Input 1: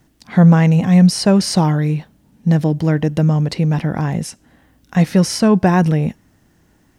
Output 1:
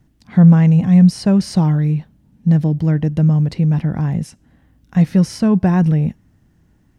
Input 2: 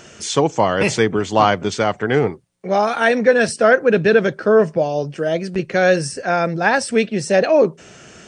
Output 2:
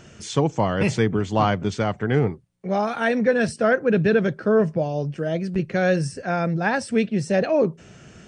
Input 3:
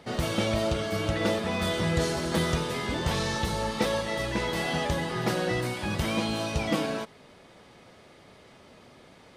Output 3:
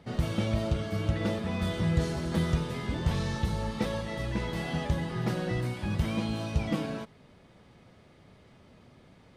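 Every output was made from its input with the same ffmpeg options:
-af "bass=frequency=250:gain=10,treble=frequency=4000:gain=-3,volume=-7dB"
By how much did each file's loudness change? +0.5, −5.0, −3.0 LU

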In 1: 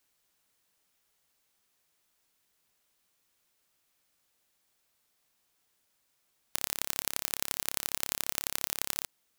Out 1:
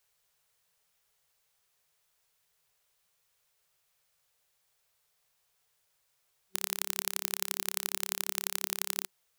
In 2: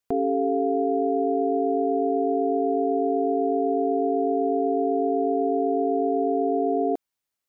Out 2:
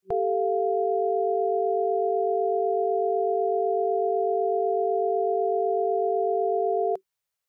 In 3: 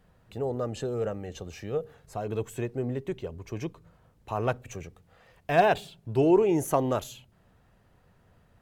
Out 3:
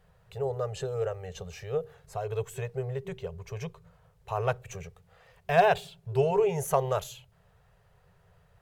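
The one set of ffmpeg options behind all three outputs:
-af "afftfilt=real='re*(1-between(b*sr/4096,190,380))':imag='im*(1-between(b*sr/4096,190,380))':win_size=4096:overlap=0.75"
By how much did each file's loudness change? 0.0, −1.0, −1.5 LU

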